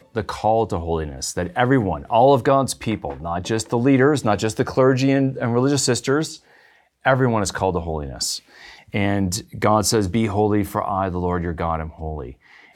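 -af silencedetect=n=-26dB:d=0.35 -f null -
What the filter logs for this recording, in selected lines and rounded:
silence_start: 6.34
silence_end: 7.05 | silence_duration: 0.71
silence_start: 8.37
silence_end: 8.94 | silence_duration: 0.57
silence_start: 12.30
silence_end: 12.75 | silence_duration: 0.45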